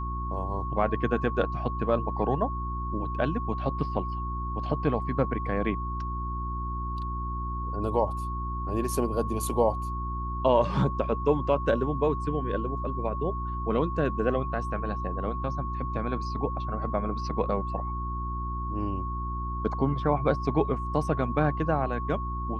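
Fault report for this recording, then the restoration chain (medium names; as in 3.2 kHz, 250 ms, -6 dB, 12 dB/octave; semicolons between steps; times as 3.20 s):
hum 60 Hz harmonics 6 -33 dBFS
whine 1.1 kHz -34 dBFS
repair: band-stop 1.1 kHz, Q 30; de-hum 60 Hz, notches 6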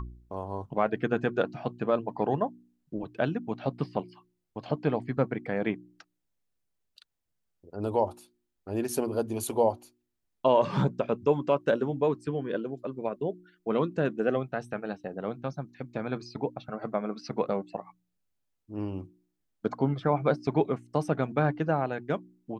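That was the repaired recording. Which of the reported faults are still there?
nothing left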